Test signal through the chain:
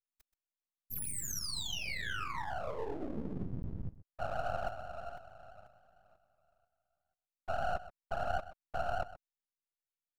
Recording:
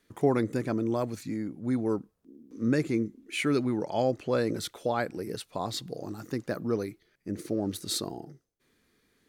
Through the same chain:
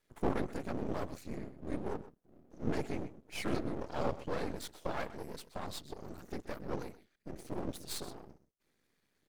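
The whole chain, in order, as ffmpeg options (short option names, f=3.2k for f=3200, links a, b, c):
-af "afftfilt=real='hypot(re,im)*cos(2*PI*random(0))':imag='hypot(re,im)*sin(2*PI*random(1))':win_size=512:overlap=0.75,aecho=1:1:127:0.168,aeval=exprs='max(val(0),0)':c=same,volume=1dB"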